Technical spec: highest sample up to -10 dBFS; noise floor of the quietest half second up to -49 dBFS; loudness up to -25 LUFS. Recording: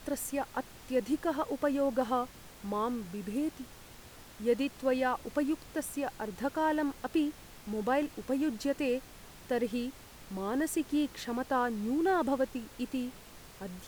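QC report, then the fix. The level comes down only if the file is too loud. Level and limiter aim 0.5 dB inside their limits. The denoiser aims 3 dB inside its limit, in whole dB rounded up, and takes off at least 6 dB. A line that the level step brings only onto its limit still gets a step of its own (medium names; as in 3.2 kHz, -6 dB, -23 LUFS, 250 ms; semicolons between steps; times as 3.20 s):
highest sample -17.5 dBFS: pass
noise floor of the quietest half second -52 dBFS: pass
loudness -33.0 LUFS: pass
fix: none needed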